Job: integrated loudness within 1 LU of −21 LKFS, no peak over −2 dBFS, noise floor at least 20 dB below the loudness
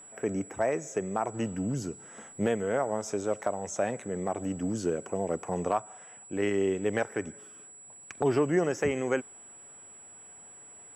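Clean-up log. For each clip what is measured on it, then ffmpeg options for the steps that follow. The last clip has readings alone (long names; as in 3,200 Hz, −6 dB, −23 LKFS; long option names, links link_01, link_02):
interfering tone 7,800 Hz; level of the tone −48 dBFS; integrated loudness −31.0 LKFS; sample peak −15.0 dBFS; target loudness −21.0 LKFS
→ -af "bandreject=frequency=7800:width=30"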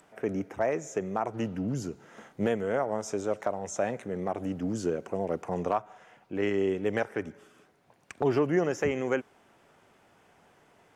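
interfering tone none found; integrated loudness −31.0 LKFS; sample peak −15.0 dBFS; target loudness −21.0 LKFS
→ -af "volume=10dB"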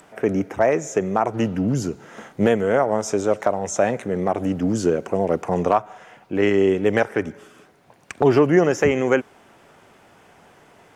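integrated loudness −21.0 LKFS; sample peak −5.0 dBFS; background noise floor −53 dBFS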